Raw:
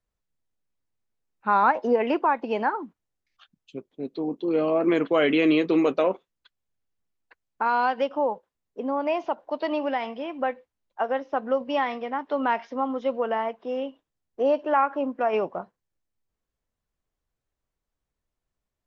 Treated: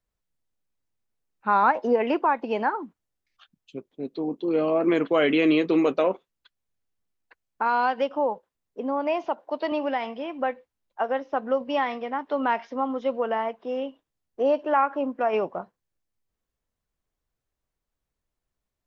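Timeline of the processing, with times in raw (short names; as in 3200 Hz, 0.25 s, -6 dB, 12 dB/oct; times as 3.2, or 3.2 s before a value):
9.28–9.72 HPF 150 Hz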